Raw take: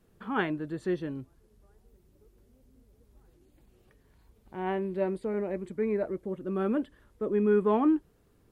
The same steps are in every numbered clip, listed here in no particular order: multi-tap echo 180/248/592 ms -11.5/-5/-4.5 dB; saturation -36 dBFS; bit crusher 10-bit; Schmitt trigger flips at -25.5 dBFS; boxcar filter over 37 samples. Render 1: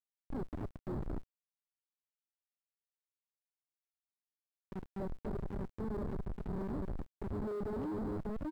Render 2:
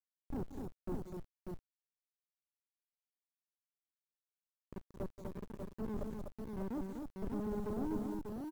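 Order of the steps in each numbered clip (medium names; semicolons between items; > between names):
multi-tap echo > Schmitt trigger > boxcar filter > bit crusher > saturation; Schmitt trigger > boxcar filter > saturation > multi-tap echo > bit crusher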